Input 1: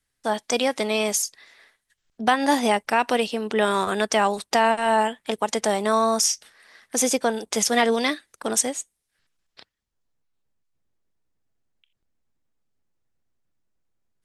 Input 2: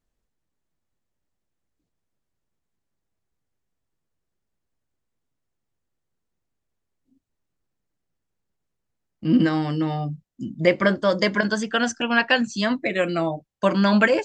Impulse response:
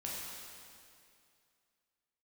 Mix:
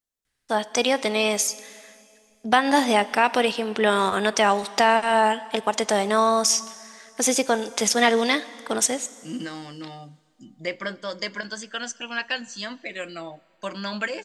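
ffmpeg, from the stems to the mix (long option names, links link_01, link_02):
-filter_complex "[0:a]aemphasis=mode=reproduction:type=75fm,adelay=250,volume=-1.5dB,asplit=2[link_01][link_02];[link_02]volume=-16dB[link_03];[1:a]lowshelf=frequency=130:gain=-11.5,volume=-13dB,asplit=2[link_04][link_05];[link_05]volume=-22dB[link_06];[2:a]atrim=start_sample=2205[link_07];[link_03][link_06]amix=inputs=2:normalize=0[link_08];[link_08][link_07]afir=irnorm=-1:irlink=0[link_09];[link_01][link_04][link_09]amix=inputs=3:normalize=0,highshelf=frequency=4900:gain=-5.5,crystalizer=i=5.5:c=0"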